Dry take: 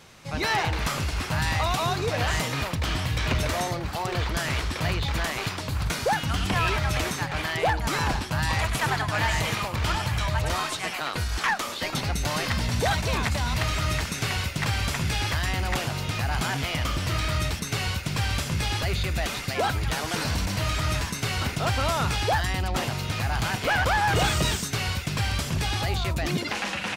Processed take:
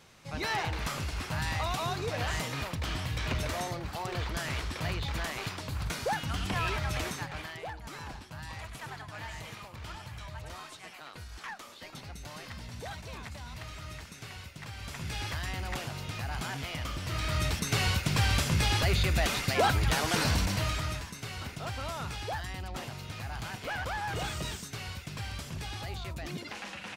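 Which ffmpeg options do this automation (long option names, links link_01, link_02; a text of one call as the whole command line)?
ffmpeg -i in.wav -af "volume=10dB,afade=type=out:start_time=7.09:duration=0.55:silence=0.316228,afade=type=in:start_time=14.76:duration=0.44:silence=0.398107,afade=type=in:start_time=17.04:duration=0.75:silence=0.354813,afade=type=out:start_time=20.27:duration=0.76:silence=0.251189" out.wav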